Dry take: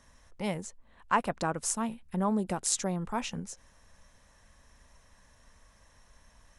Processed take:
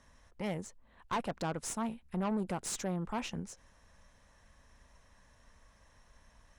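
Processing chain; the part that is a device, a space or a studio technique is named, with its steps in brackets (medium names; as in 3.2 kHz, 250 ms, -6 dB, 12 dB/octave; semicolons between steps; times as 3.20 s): tube preamp driven hard (valve stage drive 29 dB, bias 0.45; treble shelf 6.3 kHz -7 dB)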